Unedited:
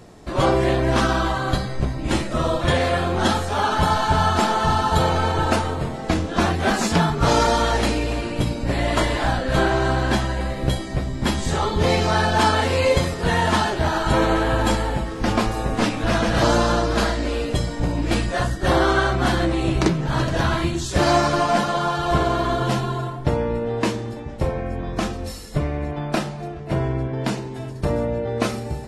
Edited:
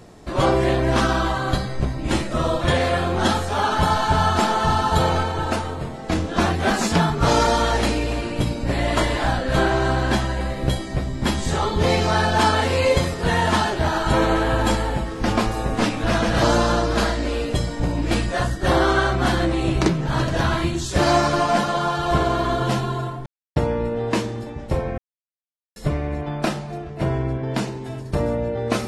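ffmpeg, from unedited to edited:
-filter_complex "[0:a]asplit=6[s0][s1][s2][s3][s4][s5];[s0]atrim=end=5.232[s6];[s1]atrim=start=5.228:end=6.122,asetpts=PTS-STARTPTS,volume=0.668[s7];[s2]atrim=start=6.118:end=23.26,asetpts=PTS-STARTPTS,afade=t=out:st=17.138:d=0.004:c=hsin,apad=pad_dur=0.3[s8];[s3]atrim=start=23.26:end=24.68,asetpts=PTS-STARTPTS,afade=t=in:d=0.004:c=hsin,afade=t=out:st=1.416:d=0.004:c=hsin[s9];[s4]atrim=start=24.68:end=25.46,asetpts=PTS-STARTPTS,volume=0[s10];[s5]atrim=start=25.46,asetpts=PTS-STARTPTS,afade=t=in:d=0.004:c=hsin[s11];[s6][s7]acrossfade=d=0.004:c1=hsin:c2=hsin[s12];[s8][s9][s10][s11]concat=n=4:v=0:a=1[s13];[s12][s13]acrossfade=d=0.004:c1=hsin:c2=hsin"

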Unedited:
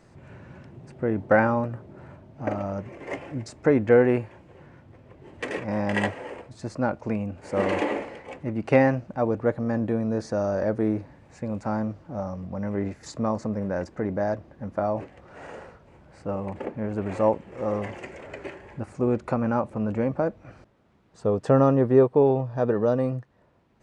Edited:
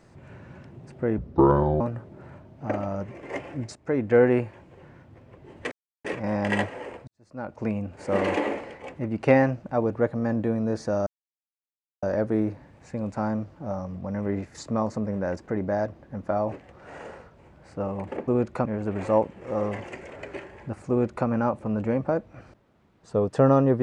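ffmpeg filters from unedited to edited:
-filter_complex "[0:a]asplit=9[s0][s1][s2][s3][s4][s5][s6][s7][s8];[s0]atrim=end=1.184[s9];[s1]atrim=start=1.18:end=1.58,asetpts=PTS-STARTPTS,asetrate=28224,aresample=44100,atrim=end_sample=27562,asetpts=PTS-STARTPTS[s10];[s2]atrim=start=1.576:end=3.53,asetpts=PTS-STARTPTS,afade=t=out:st=1.95:d=0.004:c=hsin:silence=0.237137[s11];[s3]atrim=start=3.53:end=5.49,asetpts=PTS-STARTPTS,afade=t=in:d=0.49:silence=0.237137,afade=t=out:st=1.956:d=0.004:c=hsin,apad=pad_dur=0.33[s12];[s4]atrim=start=5.49:end=6.52,asetpts=PTS-STARTPTS,afade=t=in:d=0.004:c=hsin,afade=t=out:st=1.026:d=0.004:c=hsin[s13];[s5]atrim=start=6.52:end=10.51,asetpts=PTS-STARTPTS,afade=t=in:d=0.59:c=qua,afade=t=out:st=3.986:d=0.004:c=hsin,apad=pad_dur=0.96[s14];[s6]atrim=start=10.51:end=16.762,asetpts=PTS-STARTPTS,afade=t=in:d=0.004:c=hsin[s15];[s7]atrim=start=18.998:end=19.382[s16];[s8]atrim=start=16.758[s17];[s9][s10]acrossfade=d=0.004:c1=hsin:c2=hsin[s18];[s11][s12][s13][s14][s15]concat=n=5:v=0:a=1[s19];[s18][s19]acrossfade=d=0.004:c1=hsin:c2=hsin[s20];[s20][s16]acrossfade=d=0.004:c1=hsin:c2=hsin[s21];[s21][s17]acrossfade=d=0.004:c1=hsin:c2=hsin"

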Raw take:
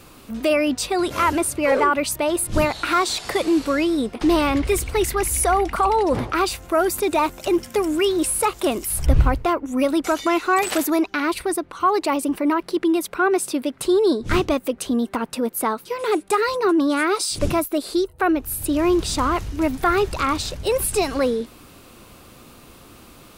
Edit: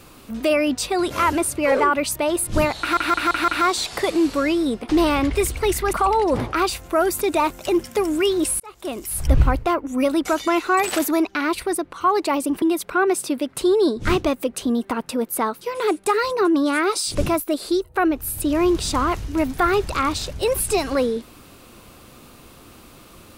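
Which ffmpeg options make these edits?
-filter_complex "[0:a]asplit=8[s0][s1][s2][s3][s4][s5][s6][s7];[s0]atrim=end=2.972[s8];[s1]atrim=start=2.798:end=2.972[s9];[s2]atrim=start=2.798:end=2.972[s10];[s3]atrim=start=2.798:end=2.972[s11];[s4]atrim=start=2.798:end=5.252[s12];[s5]atrim=start=5.718:end=8.39,asetpts=PTS-STARTPTS,afade=t=out:st=2.668:d=0.004:c=hsin[s13];[s6]atrim=start=8.39:end=12.412,asetpts=PTS-STARTPTS,afade=t=in:d=0.7[s14];[s7]atrim=start=12.858[s15];[s8][s9]acrossfade=d=0.004:c1=hsin:c2=hsin[s16];[s16][s10]acrossfade=d=0.004:c1=hsin:c2=hsin[s17];[s17][s11]acrossfade=d=0.004:c1=hsin:c2=hsin[s18];[s18][s12]acrossfade=d=0.004:c1=hsin:c2=hsin[s19];[s13][s14]concat=n=2:v=0:a=1[s20];[s19][s20]acrossfade=d=0.004:c1=hsin:c2=hsin[s21];[s21][s15]acrossfade=d=0.004:c1=hsin:c2=hsin"

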